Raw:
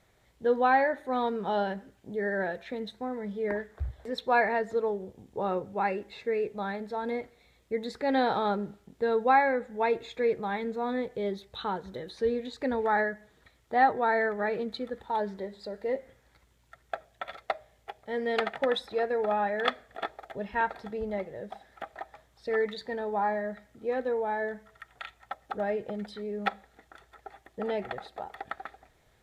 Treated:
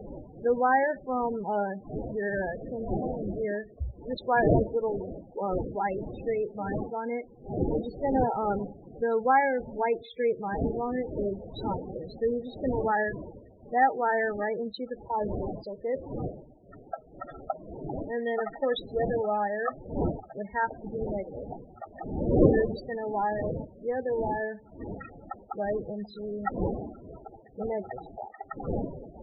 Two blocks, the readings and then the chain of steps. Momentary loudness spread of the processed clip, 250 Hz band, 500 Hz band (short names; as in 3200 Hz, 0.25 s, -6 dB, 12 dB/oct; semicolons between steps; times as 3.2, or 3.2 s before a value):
17 LU, +3.5 dB, +1.0 dB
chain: wind noise 630 Hz -33 dBFS; loudest bins only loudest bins 16